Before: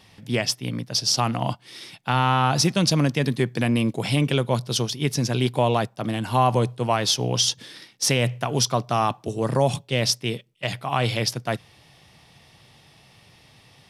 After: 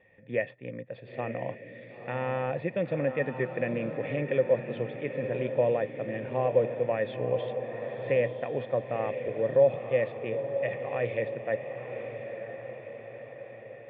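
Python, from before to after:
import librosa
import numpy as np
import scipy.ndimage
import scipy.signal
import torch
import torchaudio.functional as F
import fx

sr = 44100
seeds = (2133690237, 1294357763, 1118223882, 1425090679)

y = fx.formant_cascade(x, sr, vowel='e')
y = fx.echo_diffused(y, sr, ms=969, feedback_pct=56, wet_db=-8.0)
y = y * librosa.db_to_amplitude(5.5)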